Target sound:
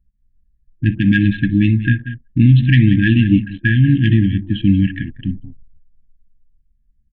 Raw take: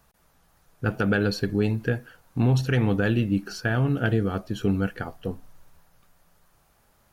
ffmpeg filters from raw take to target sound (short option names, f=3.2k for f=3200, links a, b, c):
-filter_complex "[0:a]aresample=8000,aresample=44100,acontrast=39,afftfilt=real='re*(1-between(b*sr/4096,340,1600))':imag='im*(1-between(b*sr/4096,340,1600))':win_size=4096:overlap=0.75,asplit=2[a][b];[b]aecho=0:1:64|185|193:0.106|0.15|0.141[c];[a][c]amix=inputs=2:normalize=0,anlmdn=0.398,volume=6dB"